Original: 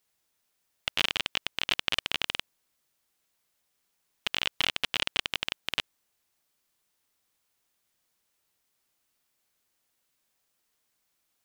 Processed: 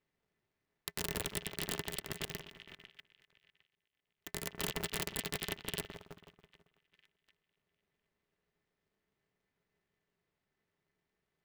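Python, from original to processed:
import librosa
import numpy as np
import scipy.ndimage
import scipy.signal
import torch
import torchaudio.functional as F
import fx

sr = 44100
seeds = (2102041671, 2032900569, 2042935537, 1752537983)

y = fx.echo_split(x, sr, split_hz=1800.0, low_ms=163, high_ms=251, feedback_pct=52, wet_db=-6.5)
y = fx.level_steps(y, sr, step_db=16)
y = fx.env_lowpass(y, sr, base_hz=2900.0, full_db=-23.0)
y = fx.small_body(y, sr, hz=(290.0, 1900.0), ring_ms=65, db=16)
y = (np.mod(10.0 ** (18.5 / 20.0) * y + 1.0, 2.0) - 1.0) / 10.0 ** (18.5 / 20.0)
y = fx.tremolo_shape(y, sr, shape='saw_up', hz=8.0, depth_pct=fx.line((1.9, 90.0), (4.61, 65.0)), at=(1.9, 4.61), fade=0.02)
y = fx.dynamic_eq(y, sr, hz=2000.0, q=1.9, threshold_db=-51.0, ratio=4.0, max_db=-6)
y = fx.spec_box(y, sr, start_s=5.98, length_s=0.84, low_hz=1400.0, high_hz=7600.0, gain_db=-11)
y = fx.low_shelf(y, sr, hz=280.0, db=10.5)
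y = y * np.sign(np.sin(2.0 * np.pi * 120.0 * np.arange(len(y)) / sr))
y = F.gain(torch.from_numpy(y), -3.5).numpy()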